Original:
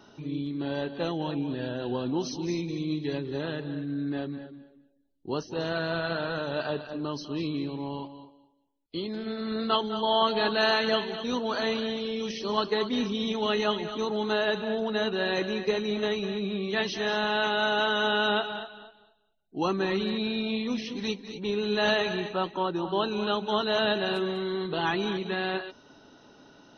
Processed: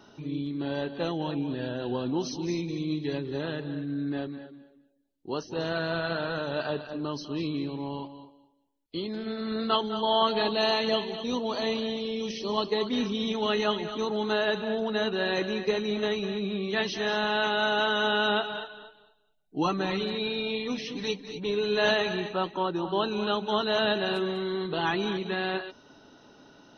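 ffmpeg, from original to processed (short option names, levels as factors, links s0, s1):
-filter_complex "[0:a]asettb=1/sr,asplit=3[s0][s1][s2];[s0]atrim=end=4.274[s3];[s1]atrim=start=4.27:end=5.43,asetpts=PTS-STARTPTS,afade=t=in:d=0.004:c=qsin,afade=t=out:st=1.156:d=0.004:c=qsin,lowshelf=f=170:g=-8[s4];[s2]atrim=start=5.426[s5];[s3][s4]acrossfade=d=0.004:c1=hsin:c2=qsin[s6];[s6][s5]acrossfade=d=0.004:c1=qsin:c2=hsin,asettb=1/sr,asplit=3[s7][s8][s9];[s7]atrim=end=10.424[s10];[s8]atrim=start=10.42:end=12.87,asetpts=PTS-STARTPTS,afade=t=in:d=0.004:c=qsin,afade=t=out:st=2.446:d=0.004:c=qsin,equalizer=f=1500:t=o:w=0.36:g=-14.5[s11];[s9]atrim=start=12.866[s12];[s10][s11]acrossfade=d=0.004:c1=hsin:c2=qsin[s13];[s13][s12]acrossfade=d=0.004:c1=qsin:c2=hsin,asettb=1/sr,asplit=3[s14][s15][s16];[s14]atrim=end=18.534[s17];[s15]atrim=start=18.53:end=21.91,asetpts=PTS-STARTPTS,afade=t=in:d=0.004:c=qsin,afade=t=out:st=3.376:d=0.004:c=qsin,aecho=1:1:6.7:0.55,atrim=end_sample=149058[s18];[s16]atrim=start=21.906[s19];[s17][s18]acrossfade=d=0.004:c1=hsin:c2=qsin[s20];[s20][s19]acrossfade=d=0.004:c1=qsin:c2=hsin"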